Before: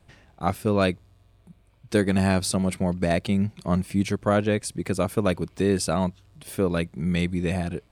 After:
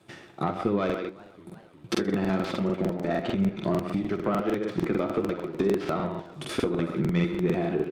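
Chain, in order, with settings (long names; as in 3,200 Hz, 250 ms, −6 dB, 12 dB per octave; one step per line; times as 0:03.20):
stylus tracing distortion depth 0.19 ms
high-pass filter 130 Hz 24 dB per octave
hollow resonant body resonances 350/1,300/3,500 Hz, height 10 dB
far-end echo of a speakerphone 130 ms, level −10 dB
downward compressor 10 to 1, threshold −30 dBFS, peak gain reduction 17 dB
leveller curve on the samples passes 1
treble cut that deepens with the level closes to 2,800 Hz, closed at −28.5 dBFS
flutter between parallel walls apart 10.8 metres, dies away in 0.36 s
flanger 1.5 Hz, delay 8.2 ms, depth 7.3 ms, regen +49%
regular buffer underruns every 0.15 s, samples 2,048, repeat, from 0:00.85
feedback echo with a swinging delay time 368 ms, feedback 64%, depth 182 cents, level −23 dB
level +8 dB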